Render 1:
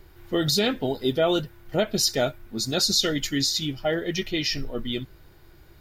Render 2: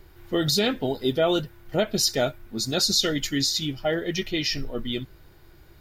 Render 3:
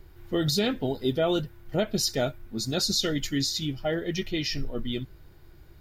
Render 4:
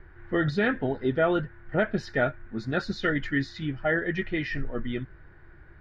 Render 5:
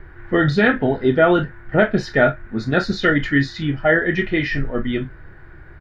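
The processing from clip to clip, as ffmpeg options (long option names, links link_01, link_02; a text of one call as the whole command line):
ffmpeg -i in.wav -af anull out.wav
ffmpeg -i in.wav -af "lowshelf=frequency=280:gain=6,volume=-4.5dB" out.wav
ffmpeg -i in.wav -af "lowpass=frequency=1700:width_type=q:width=4.5" out.wav
ffmpeg -i in.wav -af "aecho=1:1:28|44:0.316|0.188,volume=9dB" out.wav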